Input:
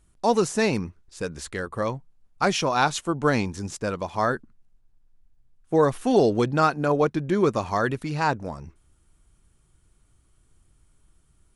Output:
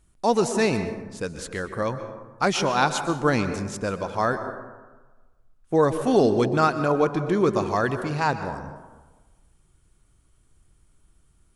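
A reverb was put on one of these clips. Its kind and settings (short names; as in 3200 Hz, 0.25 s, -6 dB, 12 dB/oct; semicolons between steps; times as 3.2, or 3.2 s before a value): plate-style reverb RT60 1.3 s, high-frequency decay 0.4×, pre-delay 0.11 s, DRR 9 dB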